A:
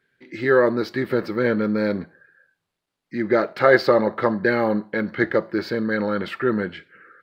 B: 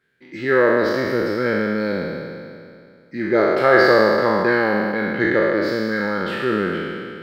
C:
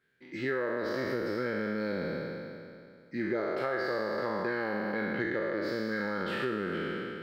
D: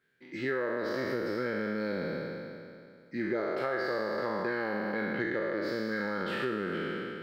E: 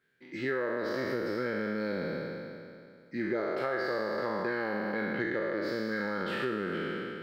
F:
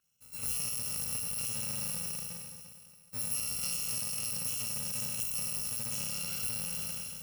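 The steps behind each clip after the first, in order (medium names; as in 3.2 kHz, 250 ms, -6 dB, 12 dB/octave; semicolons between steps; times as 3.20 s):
spectral sustain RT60 2.33 s; trim -2 dB
compression 12:1, threshold -22 dBFS, peak gain reduction 14.5 dB; trim -6 dB
peaking EQ 62 Hz -9.5 dB 0.77 oct
no audible change
bit-reversed sample order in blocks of 128 samples; trim -3 dB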